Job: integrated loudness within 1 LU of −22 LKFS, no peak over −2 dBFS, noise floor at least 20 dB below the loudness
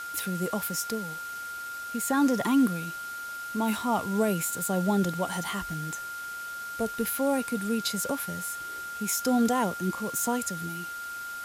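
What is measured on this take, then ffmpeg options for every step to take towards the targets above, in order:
interfering tone 1,400 Hz; level of the tone −35 dBFS; background noise floor −38 dBFS; target noise floor −49 dBFS; integrated loudness −29.0 LKFS; sample peak −15.0 dBFS; target loudness −22.0 LKFS
→ -af "bandreject=frequency=1400:width=30"
-af "afftdn=noise_reduction=11:noise_floor=-38"
-af "volume=7dB"

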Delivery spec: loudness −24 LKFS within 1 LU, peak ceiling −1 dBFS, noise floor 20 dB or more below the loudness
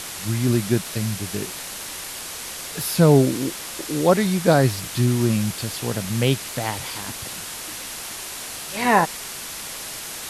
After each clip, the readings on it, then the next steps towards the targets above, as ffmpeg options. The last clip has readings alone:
background noise floor −34 dBFS; target noise floor −43 dBFS; integrated loudness −23.0 LKFS; sample peak −1.5 dBFS; target loudness −24.0 LKFS
→ -af "afftdn=noise_reduction=9:noise_floor=-34"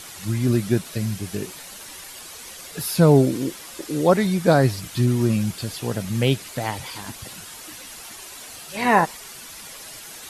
background noise floor −40 dBFS; target noise floor −42 dBFS
→ -af "afftdn=noise_reduction=6:noise_floor=-40"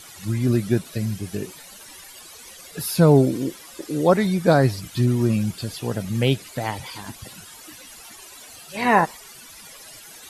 background noise floor −44 dBFS; integrated loudness −21.5 LKFS; sample peak −2.0 dBFS; target loudness −24.0 LKFS
→ -af "volume=-2.5dB"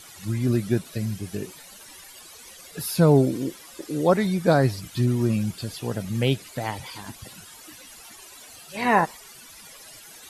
integrated loudness −24.0 LKFS; sample peak −4.5 dBFS; background noise floor −46 dBFS

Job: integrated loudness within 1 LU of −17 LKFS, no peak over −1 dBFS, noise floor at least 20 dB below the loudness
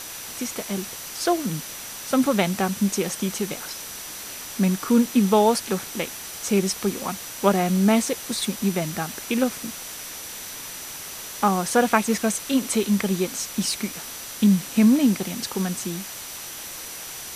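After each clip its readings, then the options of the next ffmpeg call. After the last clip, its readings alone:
interfering tone 5,900 Hz; level of the tone −42 dBFS; background noise floor −36 dBFS; target noise floor −44 dBFS; integrated loudness −24.0 LKFS; sample peak −3.0 dBFS; target loudness −17.0 LKFS
→ -af "bandreject=frequency=5900:width=30"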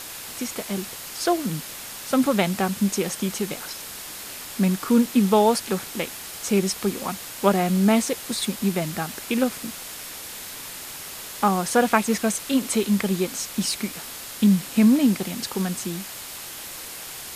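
interfering tone none found; background noise floor −37 dBFS; target noise floor −44 dBFS
→ -af "afftdn=noise_reduction=7:noise_floor=-37"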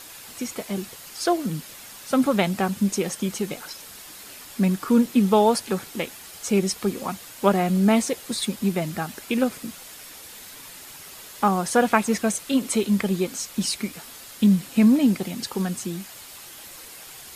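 background noise floor −43 dBFS; target noise floor −44 dBFS
→ -af "afftdn=noise_reduction=6:noise_floor=-43"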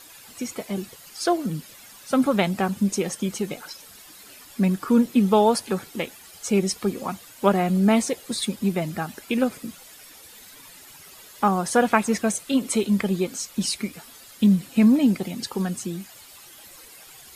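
background noise floor −47 dBFS; integrated loudness −23.5 LKFS; sample peak −3.0 dBFS; target loudness −17.0 LKFS
→ -af "volume=6.5dB,alimiter=limit=-1dB:level=0:latency=1"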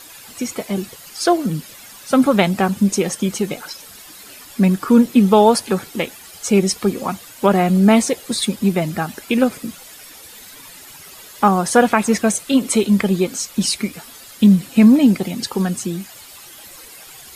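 integrated loudness −17.0 LKFS; sample peak −1.0 dBFS; background noise floor −40 dBFS

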